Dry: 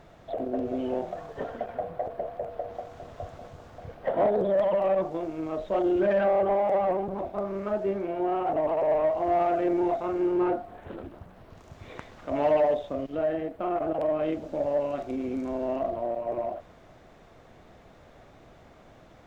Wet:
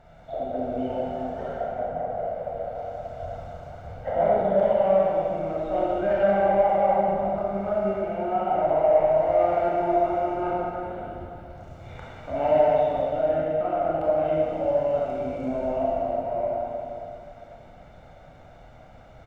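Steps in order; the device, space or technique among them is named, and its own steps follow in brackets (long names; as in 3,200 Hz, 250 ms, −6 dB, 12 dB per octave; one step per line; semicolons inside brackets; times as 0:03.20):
0:01.55–0:02.09: low-pass filter 2,100 Hz
comb filter 1.4 ms, depth 52%
swimming-pool hall (convolution reverb RT60 2.7 s, pre-delay 23 ms, DRR −6 dB; high-shelf EQ 3,400 Hz −6.5 dB)
level −4 dB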